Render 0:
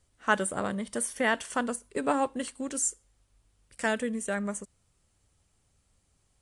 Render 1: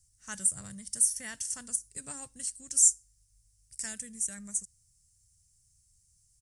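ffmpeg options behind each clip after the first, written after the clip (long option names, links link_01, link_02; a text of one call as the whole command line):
ffmpeg -i in.wav -af "firequalizer=gain_entry='entry(130,0);entry(240,-18);entry(400,-25);entry(1100,-22);entry(1800,-13);entry(3400,-13);entry(5400,9)':delay=0.05:min_phase=1,volume=-1dB" out.wav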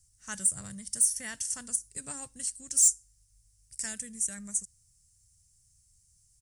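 ffmpeg -i in.wav -af "aeval=exprs='0.376*sin(PI/2*1.58*val(0)/0.376)':channel_layout=same,volume=-6dB" out.wav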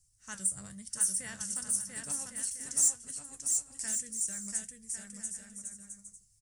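ffmpeg -i in.wav -filter_complex "[0:a]flanger=delay=6.4:depth=9.7:regen=62:speed=0.98:shape=sinusoidal,asplit=2[link_01][link_02];[link_02]aecho=0:1:690|1104|1352|1501|1591:0.631|0.398|0.251|0.158|0.1[link_03];[link_01][link_03]amix=inputs=2:normalize=0" out.wav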